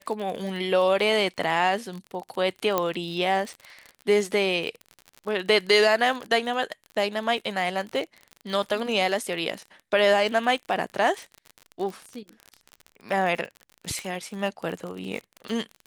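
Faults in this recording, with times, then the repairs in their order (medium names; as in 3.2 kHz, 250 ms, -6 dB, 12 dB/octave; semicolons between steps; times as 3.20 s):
crackle 42 per s -31 dBFS
2.78 s: pop -9 dBFS
13.99 s: pop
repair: de-click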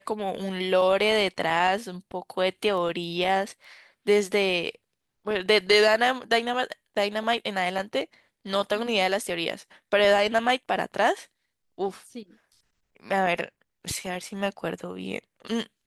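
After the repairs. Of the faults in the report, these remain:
2.78 s: pop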